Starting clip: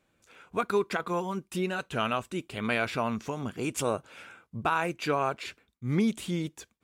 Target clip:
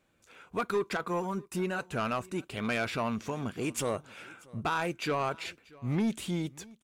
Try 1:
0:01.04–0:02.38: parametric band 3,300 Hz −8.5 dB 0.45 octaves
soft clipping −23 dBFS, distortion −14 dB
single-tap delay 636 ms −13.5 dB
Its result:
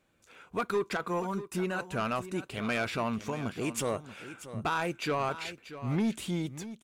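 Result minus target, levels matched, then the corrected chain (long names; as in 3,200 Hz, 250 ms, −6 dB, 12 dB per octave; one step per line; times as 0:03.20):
echo-to-direct +10 dB
0:01.04–0:02.38: parametric band 3,300 Hz −8.5 dB 0.45 octaves
soft clipping −23 dBFS, distortion −14 dB
single-tap delay 636 ms −23.5 dB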